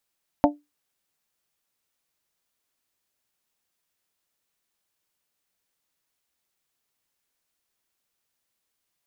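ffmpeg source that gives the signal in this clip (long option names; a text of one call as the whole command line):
ffmpeg -f lavfi -i "aevalsrc='0.224*pow(10,-3*t/0.21)*sin(2*PI*293*t)+0.2*pow(10,-3*t/0.129)*sin(2*PI*586*t)+0.178*pow(10,-3*t/0.114)*sin(2*PI*703.2*t)+0.158*pow(10,-3*t/0.097)*sin(2*PI*879*t)':duration=0.89:sample_rate=44100" out.wav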